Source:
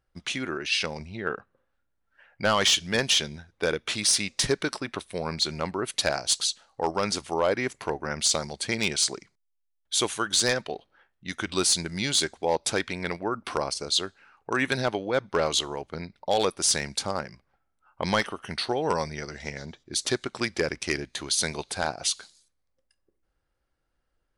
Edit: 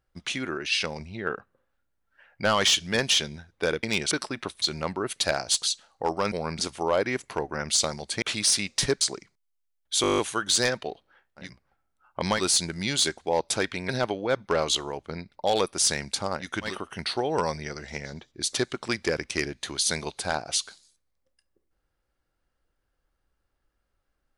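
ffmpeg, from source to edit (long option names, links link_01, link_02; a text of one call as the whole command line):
ffmpeg -i in.wav -filter_complex "[0:a]asplit=21[link_01][link_02][link_03][link_04][link_05][link_06][link_07][link_08][link_09][link_10][link_11][link_12][link_13][link_14][link_15][link_16][link_17][link_18][link_19][link_20][link_21];[link_01]atrim=end=3.832[link_22];[link_02]atrim=start=8.728:end=9.012[link_23];[link_03]atrim=start=4.618:end=5.132[link_24];[link_04]atrim=start=5.398:end=7.102[link_25];[link_05]atrim=start=5.128:end=5.402[link_26];[link_06]atrim=start=7.098:end=8.732[link_27];[link_07]atrim=start=3.828:end=4.622[link_28];[link_08]atrim=start=9.008:end=10.042[link_29];[link_09]atrim=start=10.018:end=10.042[link_30];[link_10]atrim=start=10.018:end=10.042[link_31];[link_11]atrim=start=10.018:end=10.042[link_32];[link_12]atrim=start=10.018:end=10.042[link_33];[link_13]atrim=start=10.018:end=10.042[link_34];[link_14]atrim=start=10.018:end=10.042[link_35];[link_15]atrim=start=10.018:end=10.042[link_36];[link_16]atrim=start=10.018:end=11.36[link_37];[link_17]atrim=start=17.18:end=18.29[link_38];[link_18]atrim=start=11.47:end=13.052[link_39];[link_19]atrim=start=14.728:end=17.34[link_40];[link_20]atrim=start=11.2:end=11.63[link_41];[link_21]atrim=start=18.13[link_42];[link_22][link_23]acrossfade=duration=0.004:curve1=hsin:curve2=hsin[link_43];[link_43][link_24]acrossfade=duration=0.004:curve1=hsin:curve2=hsin[link_44];[link_44][link_25]acrossfade=duration=0.004:curve1=hsin:curve2=hsin[link_45];[link_45][link_26]acrossfade=duration=0.004:curve1=hsin:curve2=hsin[link_46];[link_46][link_27]acrossfade=duration=0.004:curve1=hsin:curve2=hsin[link_47];[link_47][link_28]acrossfade=duration=0.004:curve1=hsin:curve2=hsin[link_48];[link_48][link_29]acrossfade=duration=0.004:curve1=hsin:curve2=hsin[link_49];[link_49][link_30]acrossfade=duration=0.004:curve1=hsin:curve2=hsin[link_50];[link_50][link_31]acrossfade=duration=0.004:curve1=hsin:curve2=hsin[link_51];[link_51][link_32]acrossfade=duration=0.004:curve1=hsin:curve2=hsin[link_52];[link_52][link_33]acrossfade=duration=0.004:curve1=hsin:curve2=hsin[link_53];[link_53][link_34]acrossfade=duration=0.004:curve1=hsin:curve2=hsin[link_54];[link_54][link_35]acrossfade=duration=0.004:curve1=hsin:curve2=hsin[link_55];[link_55][link_36]acrossfade=duration=0.004:curve1=hsin:curve2=hsin[link_56];[link_56][link_37]acrossfade=duration=0.004:curve1=hsin:curve2=hsin[link_57];[link_57][link_38]acrossfade=duration=0.16:curve1=tri:curve2=tri[link_58];[link_58][link_39]acrossfade=duration=0.16:curve1=tri:curve2=tri[link_59];[link_59][link_40]acrossfade=duration=0.004:curve1=hsin:curve2=hsin[link_60];[link_60][link_41]acrossfade=duration=0.16:curve1=tri:curve2=tri[link_61];[link_61][link_42]acrossfade=duration=0.16:curve1=tri:curve2=tri" out.wav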